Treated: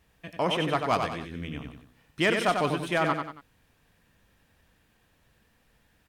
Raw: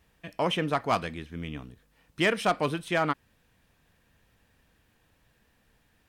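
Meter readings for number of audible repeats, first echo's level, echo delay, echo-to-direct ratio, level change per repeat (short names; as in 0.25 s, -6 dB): 3, -5.5 dB, 93 ms, -5.0 dB, -8.0 dB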